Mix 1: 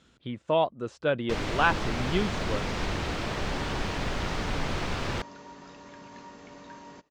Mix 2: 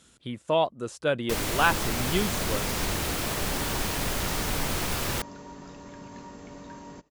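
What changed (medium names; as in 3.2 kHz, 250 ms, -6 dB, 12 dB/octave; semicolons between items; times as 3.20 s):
second sound: add tilt EQ -2.5 dB/octave; master: remove distance through air 150 m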